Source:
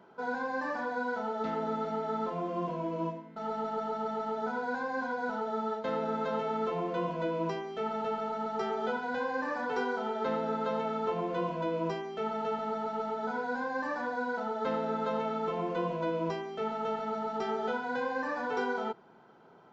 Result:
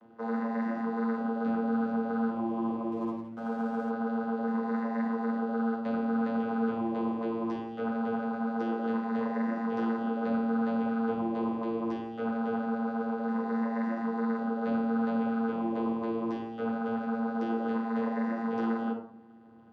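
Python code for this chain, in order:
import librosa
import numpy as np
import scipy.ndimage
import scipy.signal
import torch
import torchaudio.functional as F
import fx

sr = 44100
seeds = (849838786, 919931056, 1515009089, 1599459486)

y = fx.vocoder(x, sr, bands=16, carrier='saw', carrier_hz=114.0)
y = fx.room_shoebox(y, sr, seeds[0], volume_m3=920.0, walls='furnished', distance_m=2.0)
y = fx.backlash(y, sr, play_db=-51.0, at=(2.92, 3.91))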